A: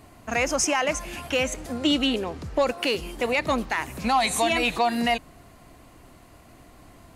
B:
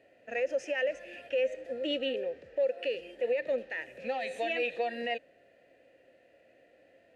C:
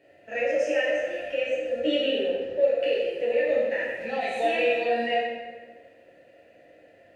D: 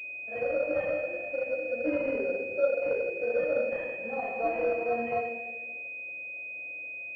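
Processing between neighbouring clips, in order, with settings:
vowel filter e; peak limiter -26.5 dBFS, peak gain reduction 9 dB; harmonic-percussive split harmonic +7 dB; trim -2 dB
plate-style reverb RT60 1.5 s, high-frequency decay 0.65×, DRR -6.5 dB
class-D stage that switches slowly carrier 2.5 kHz; trim -4 dB

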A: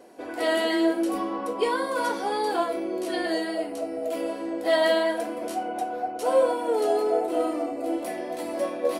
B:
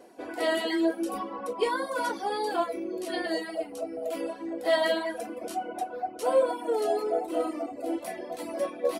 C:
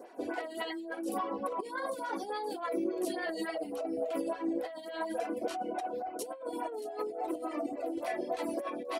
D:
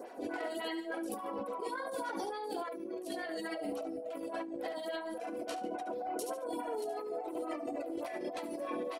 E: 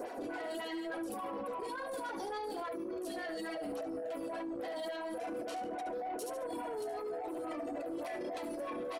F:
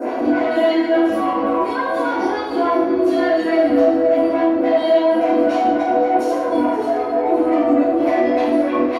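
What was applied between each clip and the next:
reverb removal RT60 1.1 s; trim -1.5 dB
compressor with a negative ratio -34 dBFS, ratio -1; lamp-driven phase shifter 3.5 Hz
on a send: feedback delay 71 ms, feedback 31%, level -10 dB; on the sum: compressor with a negative ratio -39 dBFS, ratio -1
peak limiter -37 dBFS, peak gain reduction 11 dB; saturation -39.5 dBFS, distortion -19 dB; trim +6.5 dB
delay 518 ms -14.5 dB; reverberation RT60 1.1 s, pre-delay 3 ms, DRR -10.5 dB; trim -2.5 dB

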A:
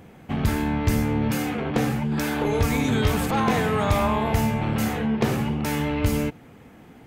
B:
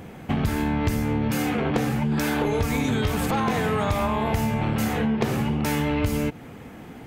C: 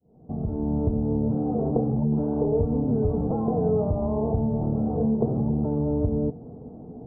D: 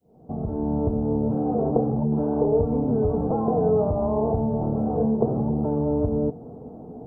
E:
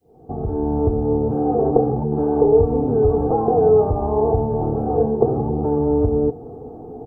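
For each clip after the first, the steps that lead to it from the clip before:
compression, threshold -27 dBFS, peak gain reduction 11.5 dB; trim +6.5 dB
fade-in on the opening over 0.76 s; inverse Chebyshev low-pass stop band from 1.8 kHz, stop band 50 dB; on a send at -8.5 dB: reverberation RT60 0.20 s, pre-delay 3 ms
bass shelf 370 Hz -9 dB; trim +7 dB
comb 2.5 ms, depth 60%; trim +4 dB

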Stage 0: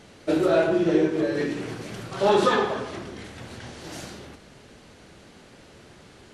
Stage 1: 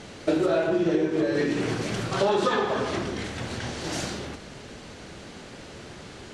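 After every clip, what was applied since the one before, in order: Chebyshev low-pass 7.9 kHz, order 2; compression 5:1, threshold -29 dBFS, peak gain reduction 12 dB; trim +8 dB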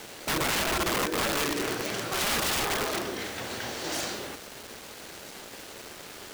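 tone controls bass -12 dB, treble +1 dB; integer overflow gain 22.5 dB; bit crusher 7-bit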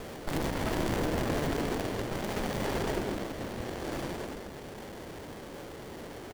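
frequency-shifting echo 163 ms, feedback 48%, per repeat -37 Hz, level -7 dB; sliding maximum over 33 samples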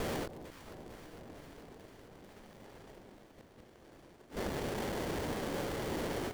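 inverted gate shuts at -29 dBFS, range -29 dB; echo whose repeats swap between lows and highs 225 ms, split 930 Hz, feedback 84%, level -12 dB; endings held to a fixed fall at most 180 dB/s; trim +6 dB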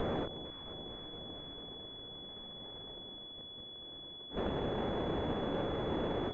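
class-D stage that switches slowly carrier 3.4 kHz; trim +2 dB

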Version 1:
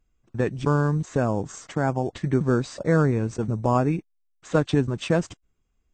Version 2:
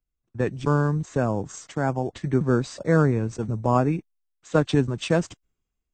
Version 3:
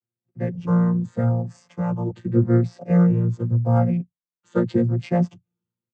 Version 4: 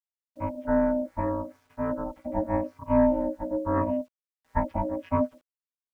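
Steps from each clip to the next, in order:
three bands expanded up and down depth 40%
vocoder on a held chord bare fifth, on A#2; endless flanger 5.9 ms +0.85 Hz; trim +6 dB
FFT filter 110 Hz 0 dB, 180 Hz +5 dB, 320 Hz -14 dB, 460 Hz +10 dB, 720 Hz +4 dB, 1.3 kHz +7 dB, 2.5 kHz -1 dB, 3.8 kHz -18 dB, 5.5 kHz -9 dB, 7.8 kHz -22 dB; ring modulator 430 Hz; bit crusher 10-bit; trim -7 dB

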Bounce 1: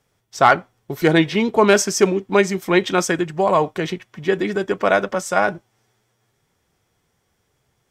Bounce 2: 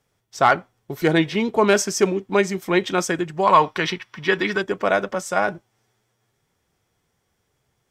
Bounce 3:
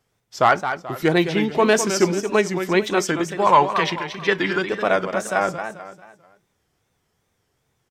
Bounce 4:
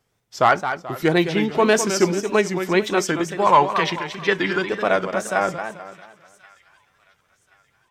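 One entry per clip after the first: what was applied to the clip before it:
time-frequency box 3.43–4.62 s, 820–6000 Hz +9 dB; trim -3 dB
on a send: feedback delay 219 ms, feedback 38%, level -9 dB; on the sum: wow and flutter 120 cents
feedback echo behind a high-pass 1079 ms, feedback 35%, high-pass 1.5 kHz, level -22.5 dB

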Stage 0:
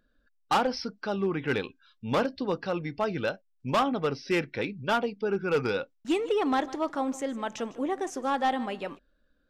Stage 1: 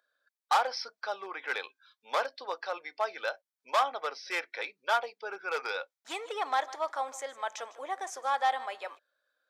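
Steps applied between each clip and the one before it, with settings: high-pass 620 Hz 24 dB/octave; band-stop 2.8 kHz, Q 7.6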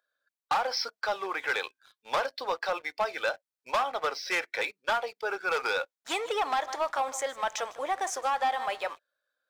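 compression 5:1, threshold -29 dBFS, peak gain reduction 8 dB; waveshaping leveller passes 2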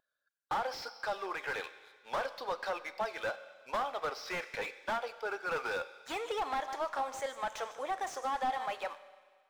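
vibrato 6 Hz 35 cents; Schroeder reverb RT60 1.7 s, combs from 31 ms, DRR 15 dB; slew-rate limiter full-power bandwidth 60 Hz; trim -5 dB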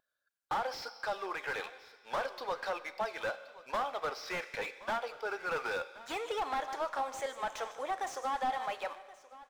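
delay 1074 ms -18.5 dB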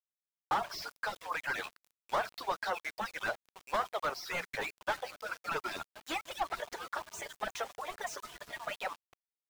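harmonic-percussive separation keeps percussive; hum notches 60/120/180 Hz; small samples zeroed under -50.5 dBFS; trim +3.5 dB

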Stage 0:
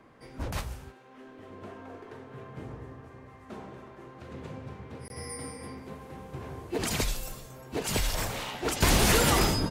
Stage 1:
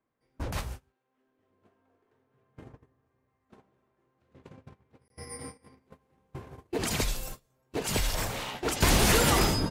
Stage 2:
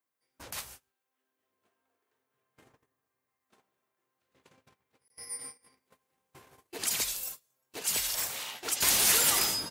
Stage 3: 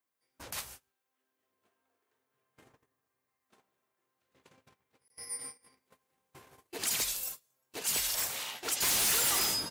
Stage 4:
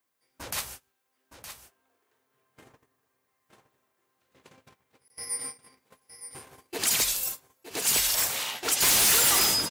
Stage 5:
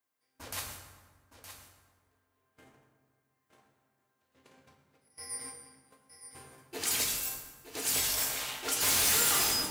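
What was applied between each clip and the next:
gate -38 dBFS, range -26 dB
tilt EQ +4 dB/octave; trim -7.5 dB
hard clipper -25.5 dBFS, distortion -9 dB
delay 916 ms -11 dB; trim +7 dB
reverberation RT60 1.5 s, pre-delay 5 ms, DRR 0.5 dB; trim -7.5 dB

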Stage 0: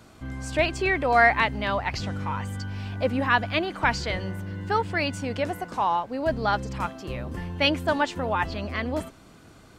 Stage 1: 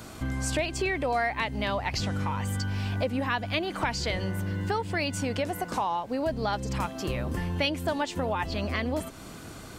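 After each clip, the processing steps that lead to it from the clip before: dynamic bell 1.4 kHz, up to -5 dB, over -36 dBFS, Q 1.5; compression 4:1, threshold -35 dBFS, peak gain reduction 16.5 dB; treble shelf 7.1 kHz +8 dB; trim +7.5 dB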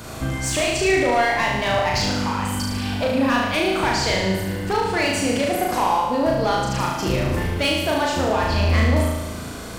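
hard clipper -23.5 dBFS, distortion -16 dB; on a send: flutter echo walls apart 6.3 m, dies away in 1.1 s; on the sum: trim +6 dB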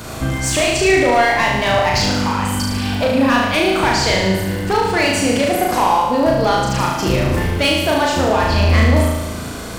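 crackle 39 per s -28 dBFS; trim +5 dB

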